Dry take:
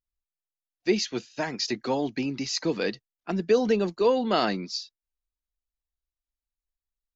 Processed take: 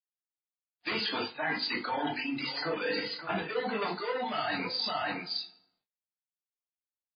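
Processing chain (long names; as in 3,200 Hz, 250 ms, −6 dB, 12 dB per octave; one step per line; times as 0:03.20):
mid-hump overdrive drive 26 dB, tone 1,800 Hz, clips at −10.5 dBFS
high-pass filter 250 Hz 6 dB per octave
parametric band 380 Hz −11 dB 1.4 octaves
single-tap delay 565 ms −13 dB
in parallel at −1 dB: brickwall limiter −24 dBFS, peak gain reduction 9.5 dB
on the sum: feedback delay network reverb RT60 0.81 s, low-frequency decay 1.1×, high-frequency decay 0.7×, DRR −1.5 dB
noise reduction from a noise print of the clip's start 12 dB
log-companded quantiser 6 bits
reversed playback
downward compressor 16 to 1, threshold −27 dBFS, peak gain reduction 16 dB
reversed playback
reverb reduction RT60 1.8 s
double-tracking delay 20 ms −8 dB
MP3 16 kbit/s 11,025 Hz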